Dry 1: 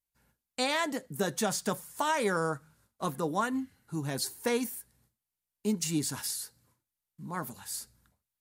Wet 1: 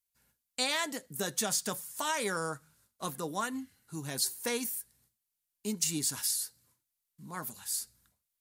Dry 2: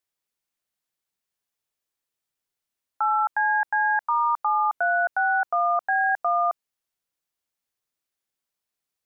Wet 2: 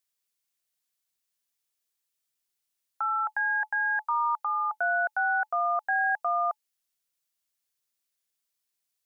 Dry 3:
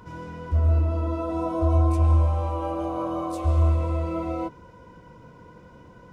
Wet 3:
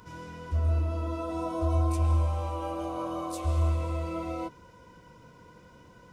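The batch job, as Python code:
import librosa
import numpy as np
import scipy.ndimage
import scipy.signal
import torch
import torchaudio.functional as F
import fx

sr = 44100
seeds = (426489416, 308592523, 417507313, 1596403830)

y = fx.high_shelf(x, sr, hz=2300.0, db=10.5)
y = fx.notch(y, sr, hz=860.0, q=28.0)
y = y * librosa.db_to_amplitude(-6.0)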